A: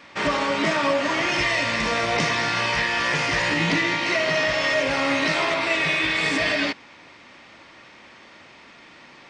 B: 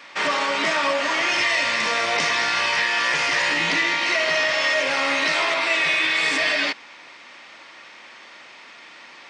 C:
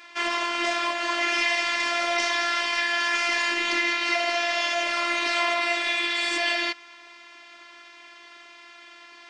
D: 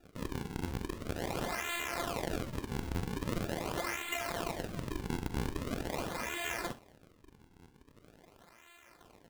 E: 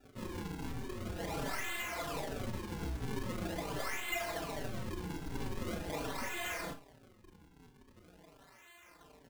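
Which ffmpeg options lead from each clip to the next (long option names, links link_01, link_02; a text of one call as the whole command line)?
ffmpeg -i in.wav -filter_complex "[0:a]highpass=frequency=830:poles=1,asplit=2[link_01][link_02];[link_02]alimiter=limit=-21dB:level=0:latency=1,volume=-2dB[link_03];[link_01][link_03]amix=inputs=2:normalize=0" out.wav
ffmpeg -i in.wav -af "afftfilt=real='hypot(re,im)*cos(PI*b)':imag='0':win_size=512:overlap=0.75" out.wav
ffmpeg -i in.wav -af "flanger=delay=3.8:depth=6.7:regen=-68:speed=1.2:shape=sinusoidal,acrusher=samples=41:mix=1:aa=0.000001:lfo=1:lforange=65.6:lforate=0.43,aecho=1:1:44|66:0.188|0.126,volume=-8dB" out.wav
ffmpeg -i in.wav -filter_complex "[0:a]aeval=exprs='(tanh(56.2*val(0)+0.7)-tanh(0.7))/56.2':channel_layout=same,asplit=2[link_01][link_02];[link_02]adelay=33,volume=-11dB[link_03];[link_01][link_03]amix=inputs=2:normalize=0,asplit=2[link_04][link_05];[link_05]adelay=4.7,afreqshift=-1.3[link_06];[link_04][link_06]amix=inputs=2:normalize=1,volume=7.5dB" out.wav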